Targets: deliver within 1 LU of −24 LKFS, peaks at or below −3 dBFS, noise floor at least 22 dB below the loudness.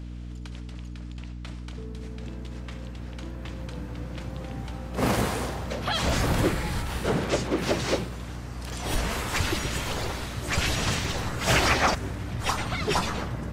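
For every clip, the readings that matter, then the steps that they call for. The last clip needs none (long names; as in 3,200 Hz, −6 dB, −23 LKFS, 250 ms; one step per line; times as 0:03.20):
mains hum 60 Hz; hum harmonics up to 300 Hz; level of the hum −35 dBFS; integrated loudness −28.5 LKFS; sample peak −9.5 dBFS; target loudness −24.0 LKFS
→ hum removal 60 Hz, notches 5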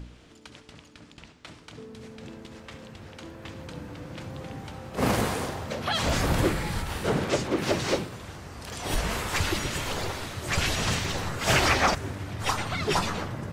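mains hum none found; integrated loudness −27.5 LKFS; sample peak −9.5 dBFS; target loudness −24.0 LKFS
→ level +3.5 dB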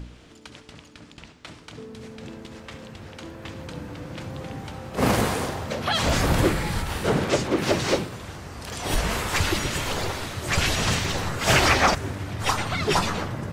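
integrated loudness −24.0 LKFS; sample peak −6.0 dBFS; background noise floor −49 dBFS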